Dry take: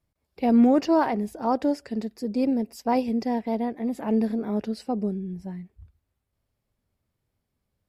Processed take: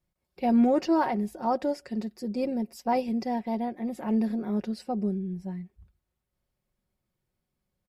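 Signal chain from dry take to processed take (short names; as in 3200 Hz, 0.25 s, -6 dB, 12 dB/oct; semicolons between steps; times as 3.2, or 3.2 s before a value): comb 5.5 ms, depth 51%; gain -3.5 dB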